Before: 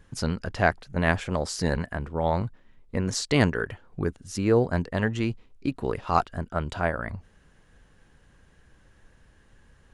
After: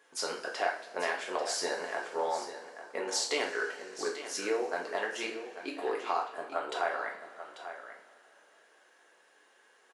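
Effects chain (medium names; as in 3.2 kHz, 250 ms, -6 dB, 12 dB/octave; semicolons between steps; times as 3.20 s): high-pass 410 Hz 24 dB/octave; compression, threshold -28 dBFS, peak gain reduction 12 dB; delay 841 ms -11.5 dB; two-slope reverb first 0.44 s, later 3.8 s, from -21 dB, DRR -1 dB; trim -2.5 dB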